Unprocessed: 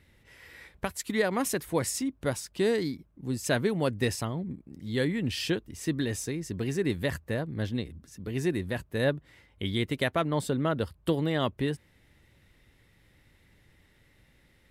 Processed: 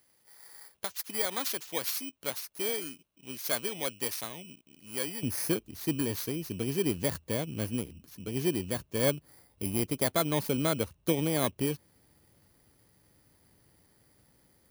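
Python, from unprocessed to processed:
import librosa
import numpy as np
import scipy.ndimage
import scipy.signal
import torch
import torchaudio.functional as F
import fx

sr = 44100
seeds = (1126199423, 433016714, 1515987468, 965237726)

y = fx.bit_reversed(x, sr, seeds[0], block=16)
y = fx.highpass(y, sr, hz=fx.steps((0.0, 1100.0), (5.23, 130.0)), slope=6)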